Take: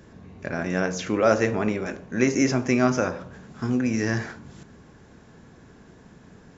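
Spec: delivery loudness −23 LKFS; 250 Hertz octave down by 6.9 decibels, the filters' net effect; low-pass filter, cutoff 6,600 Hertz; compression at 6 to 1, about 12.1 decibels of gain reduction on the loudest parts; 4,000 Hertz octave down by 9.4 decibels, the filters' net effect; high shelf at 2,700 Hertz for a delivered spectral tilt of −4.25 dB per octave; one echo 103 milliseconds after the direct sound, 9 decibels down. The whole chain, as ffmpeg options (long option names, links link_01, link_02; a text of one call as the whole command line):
ffmpeg -i in.wav -af "lowpass=6600,equalizer=frequency=250:width_type=o:gain=-8,highshelf=frequency=2700:gain=-9,equalizer=frequency=4000:width_type=o:gain=-3,acompressor=threshold=-29dB:ratio=6,aecho=1:1:103:0.355,volume=11.5dB" out.wav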